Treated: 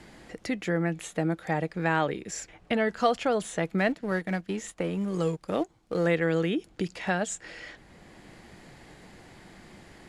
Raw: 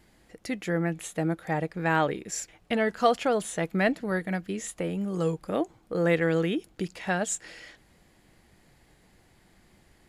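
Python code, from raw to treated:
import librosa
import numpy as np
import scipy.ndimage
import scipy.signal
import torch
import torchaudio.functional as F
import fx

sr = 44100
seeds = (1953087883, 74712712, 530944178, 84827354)

y = fx.law_mismatch(x, sr, coded='A', at=(3.78, 6.07))
y = scipy.signal.sosfilt(scipy.signal.butter(2, 8600.0, 'lowpass', fs=sr, output='sos'), y)
y = fx.band_squash(y, sr, depth_pct=40)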